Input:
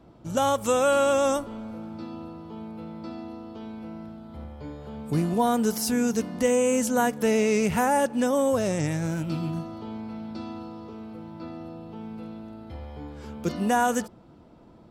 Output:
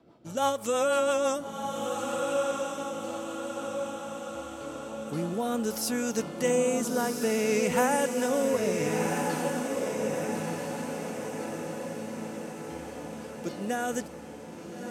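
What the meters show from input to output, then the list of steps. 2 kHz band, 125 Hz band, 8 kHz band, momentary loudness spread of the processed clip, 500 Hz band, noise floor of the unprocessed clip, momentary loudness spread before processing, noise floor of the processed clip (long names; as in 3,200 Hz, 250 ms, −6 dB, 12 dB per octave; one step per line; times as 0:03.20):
−1.5 dB, −7.0 dB, −1.0 dB, 13 LU, −2.0 dB, −52 dBFS, 18 LU, −42 dBFS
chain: high-pass filter 350 Hz 6 dB per octave
rotating-speaker cabinet horn 6 Hz, later 0.6 Hz, at 0:03.58
feedback delay with all-pass diffusion 1,381 ms, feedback 57%, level −3.5 dB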